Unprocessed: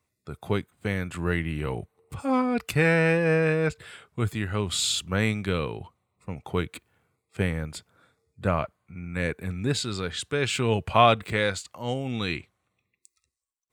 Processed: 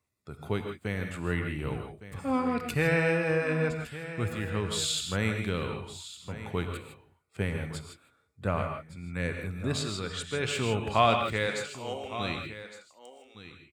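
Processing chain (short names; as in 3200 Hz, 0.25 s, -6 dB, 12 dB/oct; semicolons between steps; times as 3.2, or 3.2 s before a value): 11.46–12.18 HPF 200 Hz -> 450 Hz 24 dB/oct; echo 1.162 s -14 dB; non-linear reverb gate 0.18 s rising, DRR 4.5 dB; gain -5 dB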